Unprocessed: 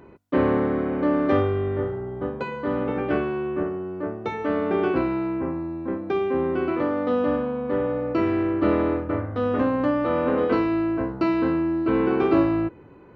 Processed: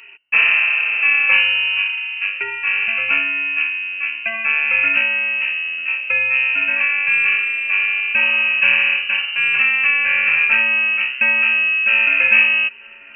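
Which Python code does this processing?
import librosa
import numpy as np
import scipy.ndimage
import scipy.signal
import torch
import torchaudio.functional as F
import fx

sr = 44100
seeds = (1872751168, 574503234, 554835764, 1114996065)

p1 = x + fx.echo_thinned(x, sr, ms=943, feedback_pct=71, hz=1100.0, wet_db=-21.0, dry=0)
p2 = fx.freq_invert(p1, sr, carrier_hz=2900)
y = p2 * 10.0 ** (6.0 / 20.0)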